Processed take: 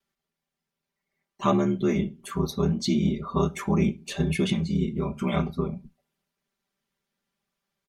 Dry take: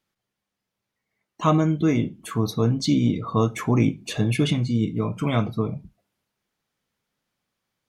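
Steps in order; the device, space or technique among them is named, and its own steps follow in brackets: ring-modulated robot voice (ring modulator 40 Hz; comb 5.1 ms, depth 99%); trim -3 dB

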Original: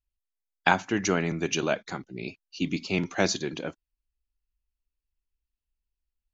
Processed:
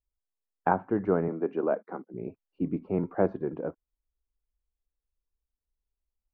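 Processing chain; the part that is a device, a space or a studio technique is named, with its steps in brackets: under water (low-pass 1.2 kHz 24 dB/octave; peaking EQ 470 Hz +6 dB 0.51 oct); 1.28–2.14 s: high-pass 210 Hz 24 dB/octave; trim -1.5 dB

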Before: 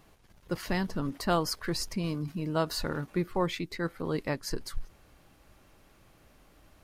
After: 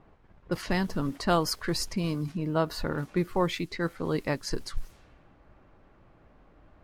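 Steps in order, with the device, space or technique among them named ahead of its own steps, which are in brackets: cassette deck with a dynamic noise filter (white noise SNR 31 dB; level-controlled noise filter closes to 1.3 kHz, open at -29 dBFS); 2.37–2.98 s: peaking EQ 9 kHz -9 dB 2.5 oct; trim +2.5 dB

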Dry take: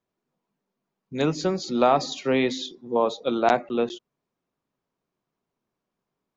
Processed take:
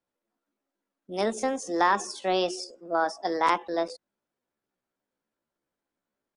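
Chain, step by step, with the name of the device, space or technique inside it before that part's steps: chipmunk voice (pitch shift +6 st); trim -3.5 dB

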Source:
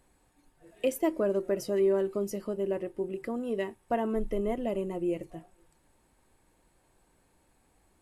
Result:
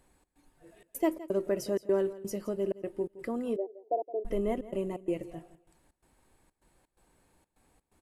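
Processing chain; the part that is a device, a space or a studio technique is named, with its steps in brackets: trance gate with a delay (trance gate "xx.xxxx." 127 bpm -60 dB; feedback delay 167 ms, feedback 27%, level -17 dB); 3.56–4.25 s: elliptic band-pass 320–750 Hz, stop band 40 dB

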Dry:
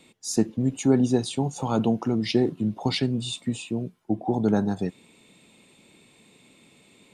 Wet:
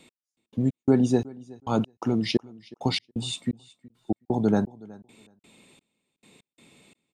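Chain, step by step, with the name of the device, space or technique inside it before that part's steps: trance gate with a delay (trance gate "x.....xx..xxx" 171 bpm -60 dB; feedback delay 370 ms, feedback 17%, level -22 dB)

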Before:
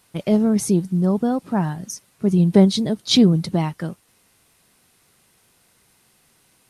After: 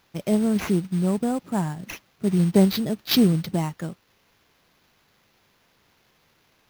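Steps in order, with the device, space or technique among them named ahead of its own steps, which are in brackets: early companding sampler (sample-rate reducer 8.5 kHz, jitter 0%; companded quantiser 6-bit); trim -4 dB

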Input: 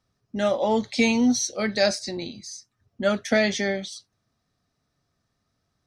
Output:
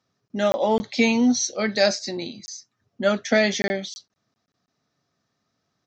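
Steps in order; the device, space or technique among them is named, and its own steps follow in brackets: call with lost packets (high-pass 150 Hz 12 dB/octave; resampled via 16 kHz; lost packets random); 0.66–1.37 s: distance through air 52 m; trim +2 dB

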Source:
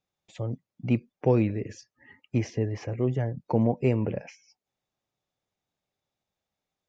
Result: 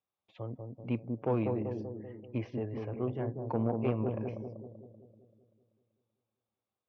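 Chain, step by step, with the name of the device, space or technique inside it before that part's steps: analogue delay pedal into a guitar amplifier (bucket-brigade echo 192 ms, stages 1024, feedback 57%, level -4 dB; valve stage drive 14 dB, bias 0.45; cabinet simulation 87–3600 Hz, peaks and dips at 160 Hz -9 dB, 1.1 kHz +7 dB, 1.9 kHz -6 dB); trim -5.5 dB

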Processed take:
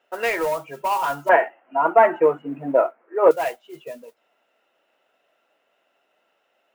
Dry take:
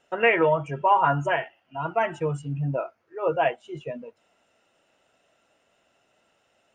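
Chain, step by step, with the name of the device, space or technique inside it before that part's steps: carbon microphone (band-pass 350–3500 Hz; saturation -16 dBFS, distortion -15 dB; modulation noise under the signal 19 dB); 1.29–3.31 s: FFT filter 140 Hz 0 dB, 240 Hz +14 dB, 1 kHz +12 dB, 2.2 kHz +7 dB, 4.7 kHz -19 dB, 9.7 kHz -15 dB

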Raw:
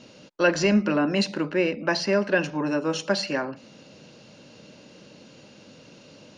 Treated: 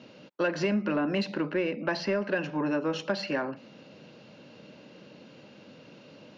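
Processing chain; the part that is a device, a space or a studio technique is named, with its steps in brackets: AM radio (band-pass 110–3500 Hz; compression 6:1, threshold -22 dBFS, peak gain reduction 7.5 dB; saturation -14.5 dBFS, distortion -26 dB); trim -1 dB

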